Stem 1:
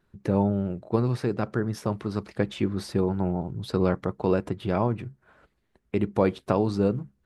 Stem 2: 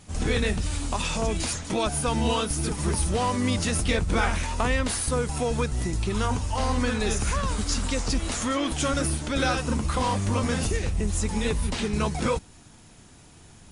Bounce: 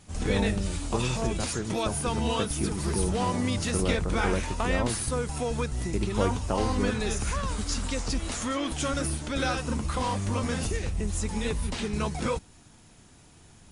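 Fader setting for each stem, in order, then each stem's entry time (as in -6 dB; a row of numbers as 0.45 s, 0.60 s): -6.0 dB, -3.5 dB; 0.00 s, 0.00 s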